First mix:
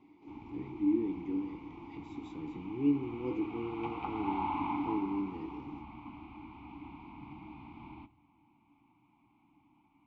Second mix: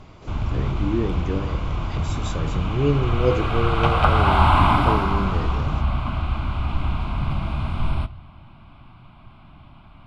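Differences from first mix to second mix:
background +5.5 dB; master: remove vowel filter u

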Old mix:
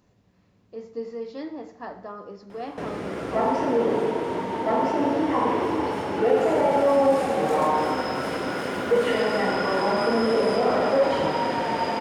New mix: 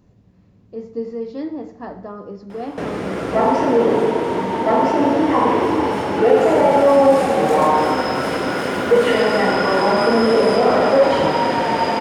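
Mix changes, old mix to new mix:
speech: add bass shelf 460 Hz +12 dB; background +7.0 dB

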